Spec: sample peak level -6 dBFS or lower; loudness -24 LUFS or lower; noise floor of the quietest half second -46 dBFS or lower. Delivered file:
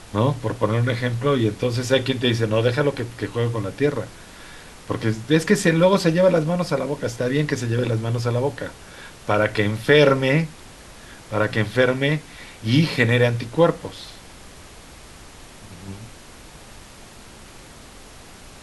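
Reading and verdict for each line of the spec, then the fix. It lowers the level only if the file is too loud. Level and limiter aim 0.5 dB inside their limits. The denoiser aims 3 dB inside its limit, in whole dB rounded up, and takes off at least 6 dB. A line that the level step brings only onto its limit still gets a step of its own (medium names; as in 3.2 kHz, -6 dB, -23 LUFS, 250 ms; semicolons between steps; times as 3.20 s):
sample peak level -3.5 dBFS: fail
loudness -21.0 LUFS: fail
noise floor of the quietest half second -43 dBFS: fail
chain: trim -3.5 dB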